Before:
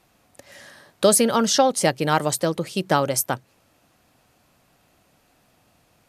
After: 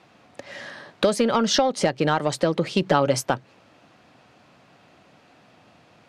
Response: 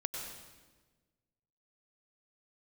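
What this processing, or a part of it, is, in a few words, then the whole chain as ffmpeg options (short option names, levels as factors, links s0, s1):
AM radio: -filter_complex "[0:a]highpass=120,lowpass=4100,acompressor=threshold=0.0708:ratio=10,asoftclip=type=tanh:threshold=0.168,asettb=1/sr,asplit=3[s0][s1][s2];[s0]atrim=end=2.814[s3];[s1]atrim=start=2.81:end=3.21,asetpts=PTS-STARTPTS,afade=t=in:d=0.004:c=qsin,afade=t=out:st=0.396:d=0.004:c=qsin,aecho=1:1:7:0.52,atrim=end_sample=17640[s4];[s2]atrim=start=3.206[s5];[s3][s4]acrossfade=d=0.004:c1=hsin:c2=qsin[s6];[s6][s5]acrossfade=d=0.004:c1=qsin:c2=hsin,volume=2.51"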